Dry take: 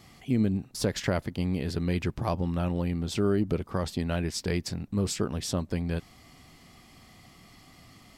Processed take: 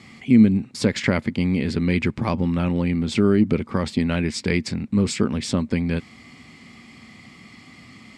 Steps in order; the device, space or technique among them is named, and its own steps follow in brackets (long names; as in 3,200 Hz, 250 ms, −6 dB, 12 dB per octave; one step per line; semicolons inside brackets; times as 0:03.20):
car door speaker (loudspeaker in its box 84–8,500 Hz, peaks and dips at 230 Hz +9 dB, 690 Hz −6 dB, 2,200 Hz +9 dB, 6,000 Hz −5 dB)
level +6 dB